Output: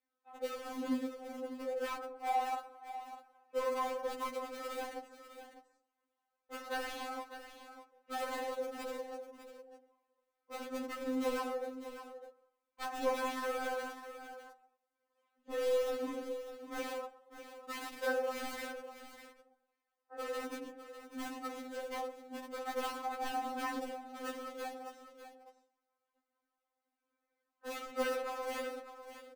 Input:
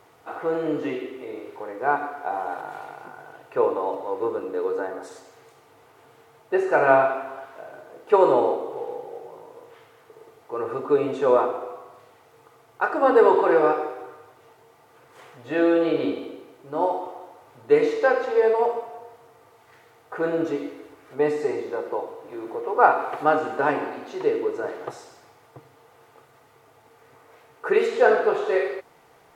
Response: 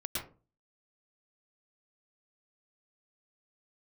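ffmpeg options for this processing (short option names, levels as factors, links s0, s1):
-filter_complex "[0:a]agate=range=0.251:threshold=0.00708:ratio=16:detection=peak,afwtdn=0.0562,highshelf=f=2900:g=-3,acrossover=split=170|910[s0][s1][s2];[s0]acompressor=threshold=0.00631:ratio=4[s3];[s1]acompressor=threshold=0.0282:ratio=4[s4];[s2]acompressor=threshold=0.0126:ratio=4[s5];[s3][s4][s5]amix=inputs=3:normalize=0,asplit=2[s6][s7];[s7]acrusher=bits=4:mix=0:aa=0.000001,volume=0.631[s8];[s6][s8]amix=inputs=2:normalize=0,flanger=delay=0.5:depth=10:regen=-40:speed=0.22:shape=sinusoidal,asoftclip=type=hard:threshold=0.0224,aecho=1:1:600:0.266,asplit=2[s9][s10];[1:a]atrim=start_sample=2205,asetrate=35721,aresample=44100[s11];[s10][s11]afir=irnorm=-1:irlink=0,volume=0.075[s12];[s9][s12]amix=inputs=2:normalize=0,afftfilt=real='re*3.46*eq(mod(b,12),0)':imag='im*3.46*eq(mod(b,12),0)':win_size=2048:overlap=0.75,volume=1.26"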